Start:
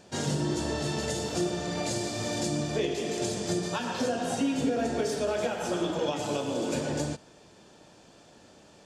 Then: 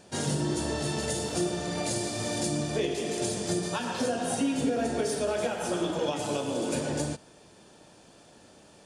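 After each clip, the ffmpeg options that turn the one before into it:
-af "equalizer=f=9400:w=6:g=13"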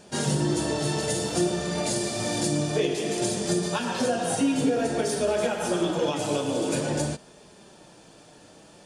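-af "flanger=delay=4.8:depth=1.8:regen=-48:speed=0.54:shape=sinusoidal,volume=2.37"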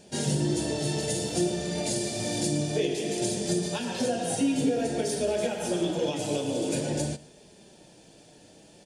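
-af "equalizer=f=1200:w=1.9:g=-12,aecho=1:1:116:0.0891,volume=0.841"

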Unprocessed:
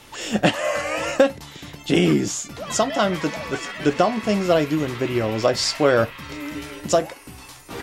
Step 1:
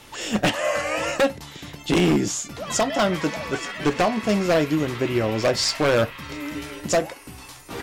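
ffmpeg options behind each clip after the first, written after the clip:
-af "aeval=exprs='0.237*(abs(mod(val(0)/0.237+3,4)-2)-1)':c=same"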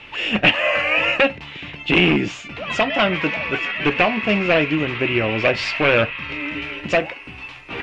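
-af "lowpass=f=2600:t=q:w=4.9,volume=1.12"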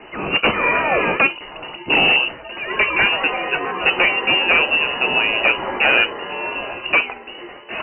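-af "apsyclip=3.16,aeval=exprs='1.12*(cos(1*acos(clip(val(0)/1.12,-1,1)))-cos(1*PI/2))+0.0126*(cos(6*acos(clip(val(0)/1.12,-1,1)))-cos(6*PI/2))':c=same,lowpass=f=2600:t=q:w=0.5098,lowpass=f=2600:t=q:w=0.6013,lowpass=f=2600:t=q:w=0.9,lowpass=f=2600:t=q:w=2.563,afreqshift=-3000,volume=0.422"

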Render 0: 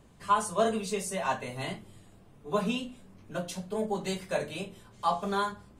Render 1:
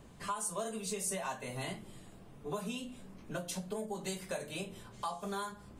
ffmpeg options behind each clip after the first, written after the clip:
-filter_complex "[0:a]bandreject=f=50:t=h:w=6,bandreject=f=100:t=h:w=6,acrossover=split=6700[s0][s1];[s0]acompressor=threshold=0.0112:ratio=6[s2];[s2][s1]amix=inputs=2:normalize=0,volume=1.33"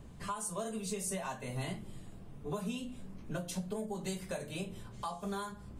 -af "lowshelf=f=200:g=10,volume=0.794"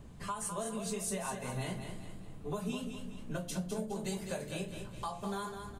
-af "aecho=1:1:206|412|618|824|1030:0.447|0.188|0.0788|0.0331|0.0139"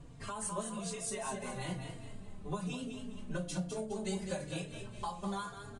-filter_complex "[0:a]aresample=22050,aresample=44100,asplit=2[s0][s1];[s1]adelay=3.7,afreqshift=-1.1[s2];[s0][s2]amix=inputs=2:normalize=1,volume=1.33"

